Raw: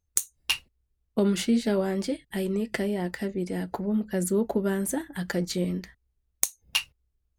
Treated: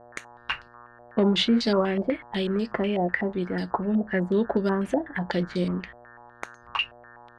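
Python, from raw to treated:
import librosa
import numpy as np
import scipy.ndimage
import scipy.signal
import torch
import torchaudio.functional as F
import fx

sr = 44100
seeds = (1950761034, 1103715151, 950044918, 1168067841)

y = fx.dmg_buzz(x, sr, base_hz=120.0, harmonics=15, level_db=-55.0, tilt_db=0, odd_only=False)
y = fx.filter_held_lowpass(y, sr, hz=8.1, low_hz=660.0, high_hz=4800.0)
y = y * 10.0 ** (1.5 / 20.0)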